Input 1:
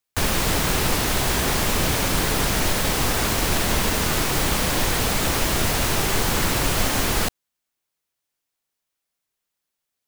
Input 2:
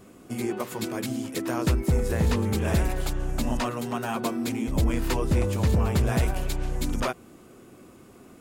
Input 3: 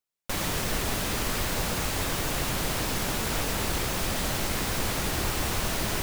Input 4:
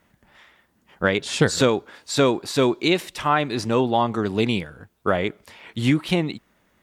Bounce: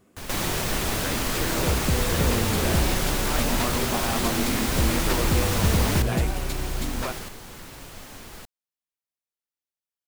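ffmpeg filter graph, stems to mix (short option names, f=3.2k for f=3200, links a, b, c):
-filter_complex "[0:a]volume=-16dB,asplit=2[a][b];[b]volume=-4.5dB[c];[1:a]dynaudnorm=f=250:g=13:m=10dB,volume=-10dB[d];[2:a]volume=2dB,asplit=2[e][f];[f]volume=-12.5dB[g];[3:a]volume=-15dB,asplit=2[h][i];[i]apad=whole_len=444260[j];[a][j]sidechaincompress=threshold=-44dB:ratio=8:attack=16:release=390[k];[c][g]amix=inputs=2:normalize=0,aecho=0:1:1166:1[l];[k][d][e][h][l]amix=inputs=5:normalize=0"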